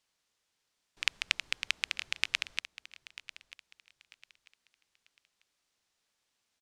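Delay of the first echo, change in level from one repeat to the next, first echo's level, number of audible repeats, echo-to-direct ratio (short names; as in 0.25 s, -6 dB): 0.943 s, -11.0 dB, -16.0 dB, 2, -15.5 dB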